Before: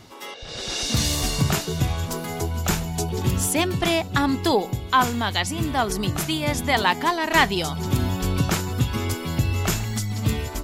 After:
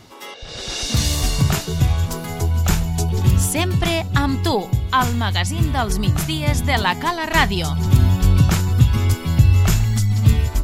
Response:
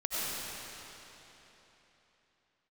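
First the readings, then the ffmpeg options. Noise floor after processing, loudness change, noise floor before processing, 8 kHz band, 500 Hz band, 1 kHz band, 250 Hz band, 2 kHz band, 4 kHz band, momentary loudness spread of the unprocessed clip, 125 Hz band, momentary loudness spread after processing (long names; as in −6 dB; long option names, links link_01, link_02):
−33 dBFS, +4.5 dB, −36 dBFS, +1.5 dB, 0.0 dB, +1.0 dB, +2.5 dB, +1.5 dB, +1.5 dB, 7 LU, +9.0 dB, 6 LU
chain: -af "asubboost=boost=3.5:cutoff=160,volume=1.5dB"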